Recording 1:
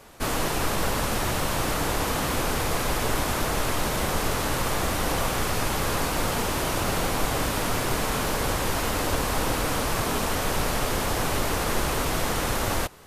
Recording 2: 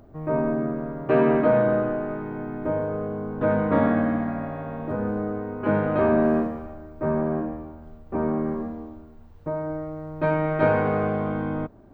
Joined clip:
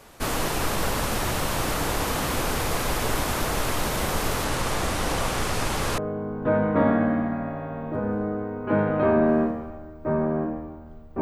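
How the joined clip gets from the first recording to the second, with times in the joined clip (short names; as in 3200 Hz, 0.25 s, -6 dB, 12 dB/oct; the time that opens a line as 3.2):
recording 1
4.44–5.98 LPF 11000 Hz 12 dB/oct
5.98 switch to recording 2 from 2.94 s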